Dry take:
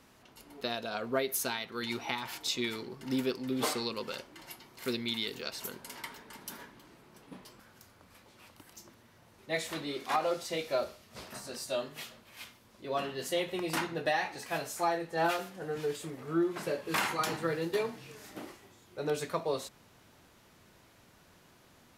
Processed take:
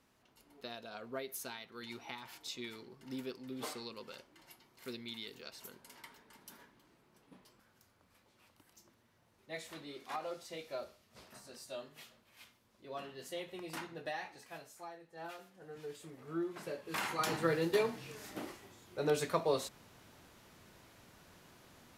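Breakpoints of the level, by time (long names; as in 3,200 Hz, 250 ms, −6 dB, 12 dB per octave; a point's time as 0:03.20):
0:14.25 −11 dB
0:14.98 −20 dB
0:16.29 −8.5 dB
0:16.92 −8.5 dB
0:17.40 +0.5 dB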